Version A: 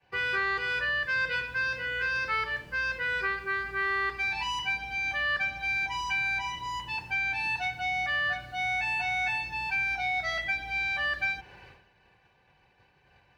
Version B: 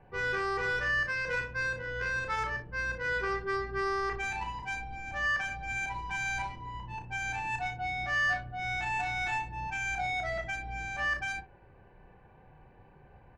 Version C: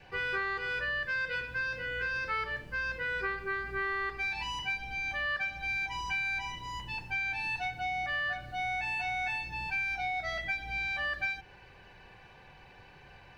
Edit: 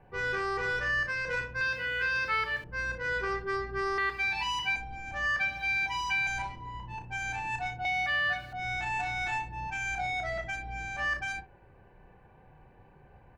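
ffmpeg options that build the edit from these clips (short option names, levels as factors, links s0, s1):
-filter_complex "[0:a]asplit=4[s0][s1][s2][s3];[1:a]asplit=5[s4][s5][s6][s7][s8];[s4]atrim=end=1.612[s9];[s0]atrim=start=1.608:end=2.642[s10];[s5]atrim=start=2.638:end=3.982[s11];[s1]atrim=start=3.978:end=4.762[s12];[s6]atrim=start=4.758:end=5.392[s13];[s2]atrim=start=5.388:end=6.272[s14];[s7]atrim=start=6.268:end=7.852[s15];[s3]atrim=start=7.848:end=8.532[s16];[s8]atrim=start=8.528[s17];[s9][s10]acrossfade=d=0.004:c1=hsin:c2=hsin[s18];[s18][s11]acrossfade=d=0.004:c1=hsin:c2=hsin[s19];[s19][s12]acrossfade=d=0.004:c1=hsin:c2=hsin[s20];[s20][s13]acrossfade=d=0.004:c1=hsin:c2=hsin[s21];[s21][s14]acrossfade=d=0.004:c1=hsin:c2=hsin[s22];[s22][s15]acrossfade=d=0.004:c1=hsin:c2=hsin[s23];[s23][s16]acrossfade=d=0.004:c1=hsin:c2=hsin[s24];[s24][s17]acrossfade=d=0.004:c1=hsin:c2=hsin"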